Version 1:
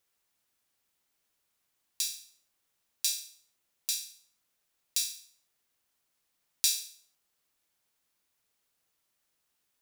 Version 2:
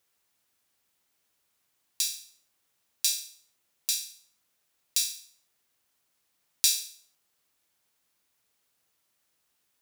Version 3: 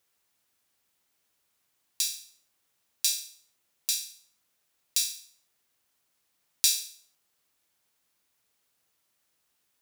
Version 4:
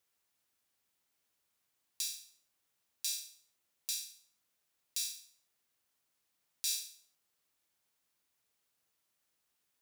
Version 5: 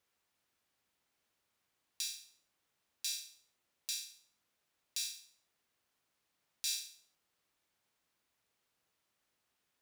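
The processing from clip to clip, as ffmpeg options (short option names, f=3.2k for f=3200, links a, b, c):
-af "highpass=43,volume=3.5dB"
-af anull
-af "alimiter=limit=-11dB:level=0:latency=1:release=98,volume=-6dB"
-af "highshelf=f=5.6k:g=-9.5,volume=3.5dB"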